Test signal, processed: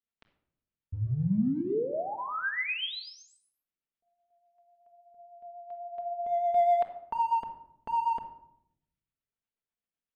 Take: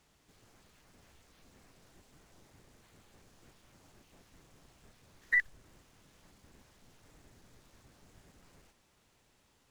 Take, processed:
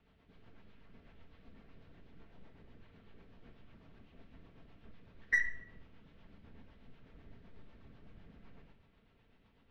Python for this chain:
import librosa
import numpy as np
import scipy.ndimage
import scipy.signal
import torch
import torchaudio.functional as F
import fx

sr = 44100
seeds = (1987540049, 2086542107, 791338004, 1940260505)

p1 = scipy.signal.sosfilt(scipy.signal.butter(4, 3400.0, 'lowpass', fs=sr, output='sos'), x)
p2 = fx.low_shelf(p1, sr, hz=360.0, db=3.5)
p3 = np.clip(p2, -10.0 ** (-27.5 / 20.0), 10.0 ** (-27.5 / 20.0))
p4 = p2 + F.gain(torch.from_numpy(p3), -9.5).numpy()
p5 = fx.rotary(p4, sr, hz=8.0)
p6 = fx.room_shoebox(p5, sr, seeds[0], volume_m3=2000.0, walls='furnished', distance_m=1.6)
y = F.gain(torch.from_numpy(p6), -2.0).numpy()